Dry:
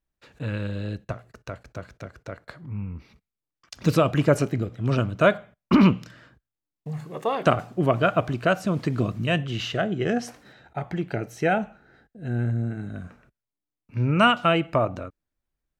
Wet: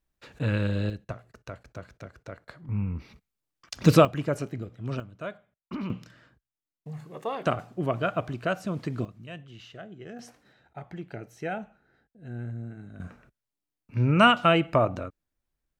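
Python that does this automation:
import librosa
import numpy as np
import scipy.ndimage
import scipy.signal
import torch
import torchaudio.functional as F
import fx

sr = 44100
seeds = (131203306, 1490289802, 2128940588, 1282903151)

y = fx.gain(x, sr, db=fx.steps((0.0, 3.0), (0.9, -4.5), (2.69, 3.0), (4.05, -9.0), (5.0, -18.0), (5.9, -6.5), (9.05, -18.0), (10.19, -10.5), (13.0, 0.0)))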